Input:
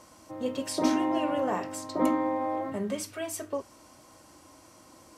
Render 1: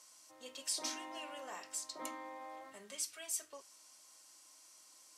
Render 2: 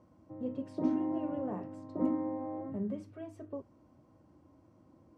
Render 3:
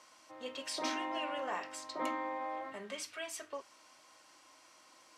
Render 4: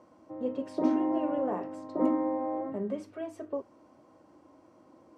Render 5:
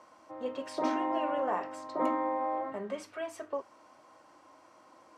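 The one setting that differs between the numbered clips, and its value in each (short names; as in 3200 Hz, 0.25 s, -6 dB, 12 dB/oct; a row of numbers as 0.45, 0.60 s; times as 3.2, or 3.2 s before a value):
band-pass, frequency: 7400, 130, 2700, 360, 1000 Hz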